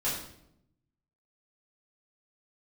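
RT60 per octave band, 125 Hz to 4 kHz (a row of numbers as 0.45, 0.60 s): 1.3, 1.1, 0.85, 0.65, 0.60, 0.60 s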